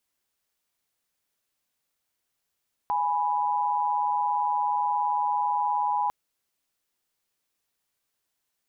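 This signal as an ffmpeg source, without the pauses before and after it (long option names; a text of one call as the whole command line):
ffmpeg -f lavfi -i "aevalsrc='0.0531*(sin(2*PI*830.61*t)+sin(2*PI*987.77*t))':duration=3.2:sample_rate=44100" out.wav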